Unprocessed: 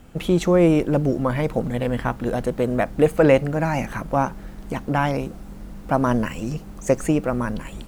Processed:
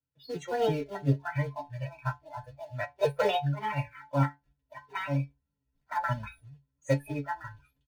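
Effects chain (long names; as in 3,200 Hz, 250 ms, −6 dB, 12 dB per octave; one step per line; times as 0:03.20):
pitch shifter gated in a rhythm +5 semitones, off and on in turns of 169 ms
hum removal 257.6 Hz, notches 4
noise reduction from a noise print of the clip's start 28 dB
high-pass filter 49 Hz 6 dB per octave
high-shelf EQ 9,500 Hz −2 dB
comb filter 2.1 ms, depth 54%
in parallel at −7 dB: log-companded quantiser 4 bits
on the sum: stiff-string resonator 140 Hz, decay 0.22 s, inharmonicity 0.002
convolution reverb RT60 0.10 s, pre-delay 3 ms, DRR 3 dB
expander for the loud parts 1.5 to 1, over −30 dBFS
level −6 dB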